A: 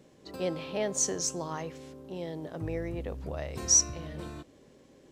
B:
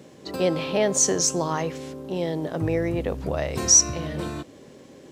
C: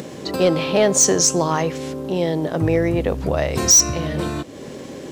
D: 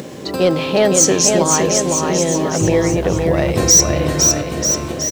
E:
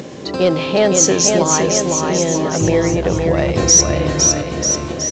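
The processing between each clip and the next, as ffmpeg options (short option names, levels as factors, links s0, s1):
-filter_complex "[0:a]highpass=84,asplit=2[s0][s1];[s1]alimiter=level_in=1.06:limit=0.0631:level=0:latency=1:release=91,volume=0.944,volume=1.06[s2];[s0][s2]amix=inputs=2:normalize=0,volume=1.68"
-filter_complex "[0:a]asplit=2[s0][s1];[s1]acompressor=mode=upward:threshold=0.0501:ratio=2.5,volume=1.41[s2];[s0][s2]amix=inputs=2:normalize=0,asoftclip=type=hard:threshold=0.473,volume=0.841"
-af "acrusher=bits=8:mix=0:aa=0.000001,aecho=1:1:510|943.5|1312|1625|1891:0.631|0.398|0.251|0.158|0.1,volume=1.26"
-ar 16000 -c:a pcm_alaw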